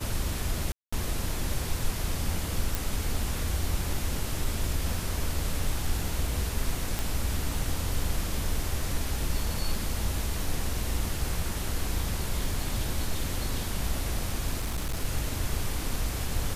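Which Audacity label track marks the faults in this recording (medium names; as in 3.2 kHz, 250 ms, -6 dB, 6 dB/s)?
0.720000	0.930000	dropout 205 ms
2.750000	2.750000	pop
6.990000	6.990000	pop
14.600000	15.050000	clipped -26 dBFS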